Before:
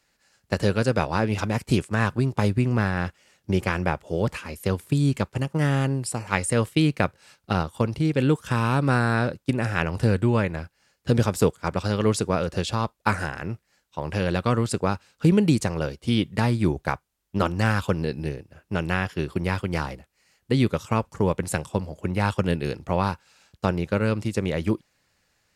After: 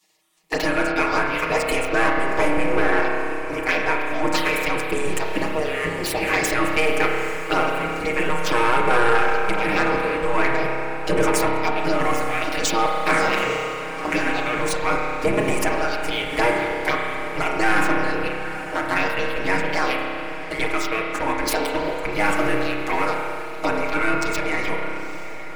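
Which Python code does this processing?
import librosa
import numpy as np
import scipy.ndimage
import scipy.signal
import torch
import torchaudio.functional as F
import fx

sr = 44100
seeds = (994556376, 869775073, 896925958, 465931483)

p1 = fx.step_gate(x, sr, bpm=110, pattern='xxxxxx.xx..xxxxx', floor_db=-12.0, edge_ms=4.5)
p2 = fx.leveller(p1, sr, passes=2)
p3 = fx.env_phaser(p2, sr, low_hz=260.0, high_hz=4100.0, full_db=-13.0)
p4 = fx.low_shelf(p3, sr, hz=410.0, db=9.0)
p5 = fx.over_compress(p4, sr, threshold_db=-24.0, ratio=-1.0)
p6 = p4 + (p5 * 10.0 ** (-1.5 / 20.0))
p7 = fx.peak_eq(p6, sr, hz=2200.0, db=10.5, octaves=0.5)
p8 = fx.spec_gate(p7, sr, threshold_db=-15, keep='weak')
p9 = p8 + 0.98 * np.pad(p8, (int(6.4 * sr / 1000.0), 0))[:len(p8)]
p10 = p9 + fx.echo_diffused(p9, sr, ms=871, feedback_pct=59, wet_db=-14.5, dry=0)
p11 = fx.rev_spring(p10, sr, rt60_s=2.3, pass_ms=(30,), chirp_ms=25, drr_db=1.0)
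p12 = 10.0 ** (-7.5 / 20.0) * np.tanh(p11 / 10.0 ** (-7.5 / 20.0))
y = p12 * 10.0 ** (-2.5 / 20.0)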